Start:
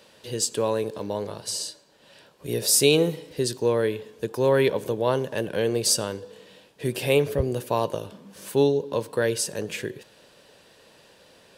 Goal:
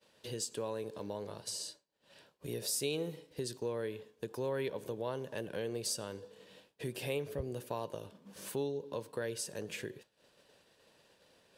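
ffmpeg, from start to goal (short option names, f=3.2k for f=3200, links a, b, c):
-af "acompressor=threshold=-47dB:ratio=2,agate=range=-33dB:threshold=-45dB:ratio=3:detection=peak"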